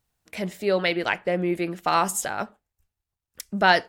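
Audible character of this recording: noise floor -88 dBFS; spectral tilt -3.5 dB/oct

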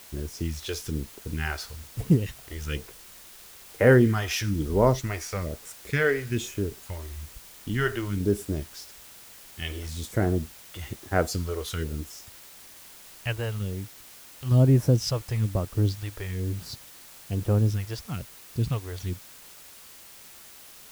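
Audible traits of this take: phasing stages 2, 1.1 Hz, lowest notch 170–4100 Hz; a quantiser's noise floor 8-bit, dither triangular

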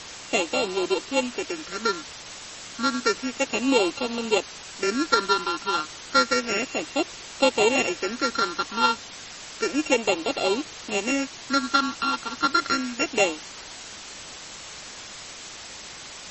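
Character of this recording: a buzz of ramps at a fixed pitch in blocks of 32 samples; phasing stages 6, 0.31 Hz, lowest notch 570–1700 Hz; a quantiser's noise floor 6-bit, dither triangular; MP3

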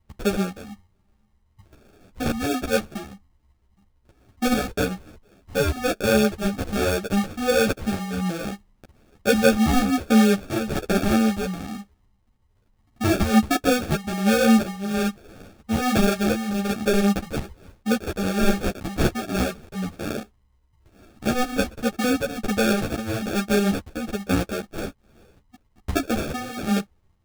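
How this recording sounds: phasing stages 4, 1.2 Hz, lowest notch 330–3600 Hz; aliases and images of a low sample rate 1000 Hz, jitter 0%; a shimmering, thickened sound

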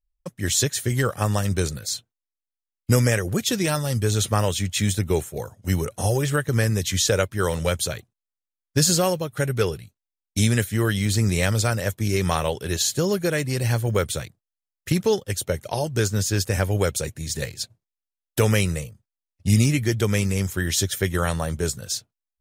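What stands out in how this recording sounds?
noise floor -88 dBFS; spectral tilt -4.5 dB/oct

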